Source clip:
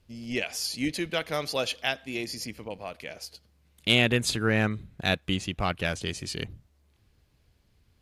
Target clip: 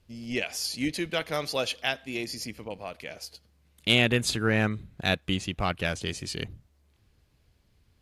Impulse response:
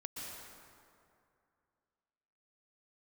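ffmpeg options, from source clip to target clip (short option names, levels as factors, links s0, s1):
-ar 32000 -c:a aac -b:a 96k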